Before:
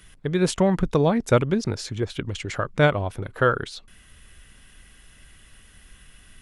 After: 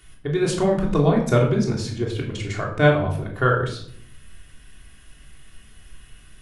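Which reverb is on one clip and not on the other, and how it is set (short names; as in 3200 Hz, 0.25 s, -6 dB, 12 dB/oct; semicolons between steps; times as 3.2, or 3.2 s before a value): shoebox room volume 1000 m³, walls furnished, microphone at 3.3 m; gain -3.5 dB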